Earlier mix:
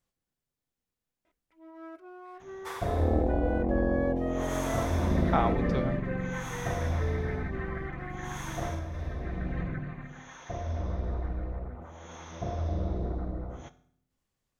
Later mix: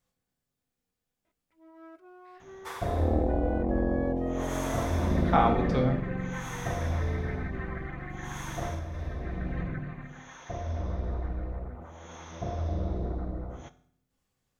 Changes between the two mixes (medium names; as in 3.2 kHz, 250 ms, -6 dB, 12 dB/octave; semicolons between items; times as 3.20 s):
speech: send +11.5 dB; first sound -4.5 dB